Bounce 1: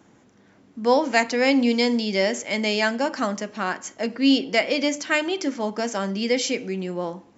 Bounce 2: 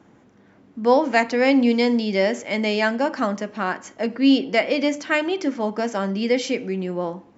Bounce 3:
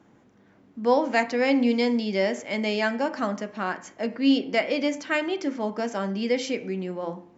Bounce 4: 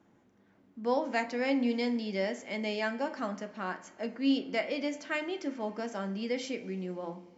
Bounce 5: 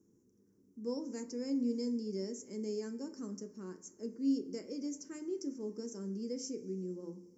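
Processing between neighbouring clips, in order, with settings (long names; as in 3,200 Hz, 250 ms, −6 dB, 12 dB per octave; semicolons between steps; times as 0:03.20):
low-pass filter 2,400 Hz 6 dB per octave; level +2.5 dB
hum removal 87.93 Hz, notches 30; level −4 dB
coupled-rooms reverb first 0.24 s, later 4 s, from −22 dB, DRR 11.5 dB; level −8 dB
drawn EQ curve 280 Hz 0 dB, 430 Hz +4 dB, 690 Hz −26 dB, 1,000 Hz −15 dB, 3,700 Hz −28 dB, 5,500 Hz +7 dB; level −4 dB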